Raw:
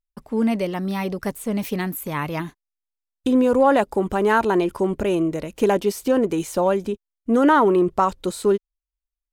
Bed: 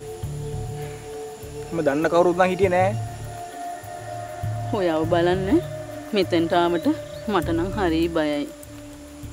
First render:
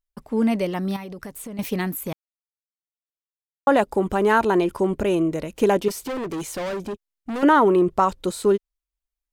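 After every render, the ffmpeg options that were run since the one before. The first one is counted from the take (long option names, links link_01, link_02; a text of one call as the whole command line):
ffmpeg -i in.wav -filter_complex "[0:a]asettb=1/sr,asplit=3[link_01][link_02][link_03];[link_01]atrim=end=0.964[link_04];[link_02]atrim=start=0.96:end=1.59,asetpts=PTS-STARTPTS,afade=type=in:duration=0.004:curve=qsin,afade=type=out:start_time=0.626:duration=0.004:curve=qsin,acompressor=threshold=-31dB:ratio=16:attack=3.2:release=140:knee=1:detection=peak[link_05];[link_03]atrim=start=1.586[link_06];[link_04][link_05]acrossfade=duration=0.004:curve1=hsin:curve2=qsin[link_07];[link_07][link_06]acrossfade=duration=0.004:curve1=qsin:curve2=hsin,asettb=1/sr,asplit=3[link_08][link_09][link_10];[link_08]atrim=end=5.884[link_11];[link_09]atrim=start=5.88:end=7.43,asetpts=PTS-STARTPTS,afade=type=in:duration=0.004:curve=qsin,afade=type=out:start_time=1.546:duration=0.004:curve=qsin,asoftclip=type=hard:threshold=-26dB[link_12];[link_10]atrim=start=7.426[link_13];[link_11][link_12]acrossfade=duration=0.004:curve1=hsin:curve2=qsin[link_14];[link_14][link_13]acrossfade=duration=0.004:curve1=qsin:curve2=hsin,asplit=3[link_15][link_16][link_17];[link_15]atrim=end=2.13,asetpts=PTS-STARTPTS,afade=type=out:start_time=2.126:duration=0.004:curve=hsin[link_18];[link_16]atrim=start=2.13:end=3.67,asetpts=PTS-STARTPTS,volume=0[link_19];[link_17]atrim=start=3.67,asetpts=PTS-STARTPTS,afade=type=in:duration=0.004:curve=hsin[link_20];[link_18][link_19][link_20]concat=n=3:v=0:a=1" out.wav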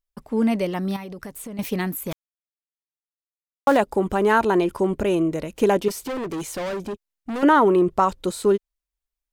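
ffmpeg -i in.wav -filter_complex "[0:a]asettb=1/sr,asplit=3[link_01][link_02][link_03];[link_01]atrim=end=2.114[link_04];[link_02]atrim=start=2.11:end=3.77,asetpts=PTS-STARTPTS,afade=type=in:duration=0.004:curve=qsin,afade=type=out:start_time=1.656:duration=0.004:curve=qsin,aeval=exprs='val(0)*gte(abs(val(0)),0.0422)':channel_layout=same[link_05];[link_03]atrim=start=3.766[link_06];[link_04][link_05]acrossfade=duration=0.004:curve1=hsin:curve2=qsin[link_07];[link_07][link_06]acrossfade=duration=0.004:curve1=qsin:curve2=hsin" out.wav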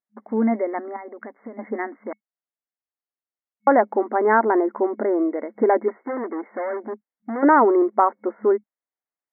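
ffmpeg -i in.wav -af "afftfilt=real='re*between(b*sr/4096,210,2200)':imag='im*between(b*sr/4096,210,2200)':win_size=4096:overlap=0.75,equalizer=frequency=730:width_type=o:width=0.54:gain=4.5" out.wav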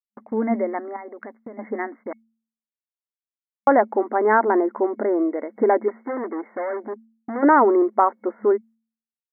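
ffmpeg -i in.wav -af "agate=range=-32dB:threshold=-43dB:ratio=16:detection=peak,bandreject=frequency=112.5:width_type=h:width=4,bandreject=frequency=225:width_type=h:width=4" out.wav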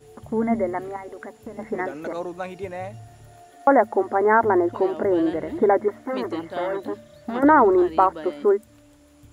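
ffmpeg -i in.wav -i bed.wav -filter_complex "[1:a]volume=-13.5dB[link_01];[0:a][link_01]amix=inputs=2:normalize=0" out.wav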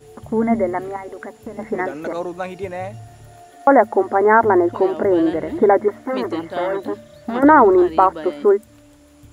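ffmpeg -i in.wav -af "volume=4.5dB,alimiter=limit=-1dB:level=0:latency=1" out.wav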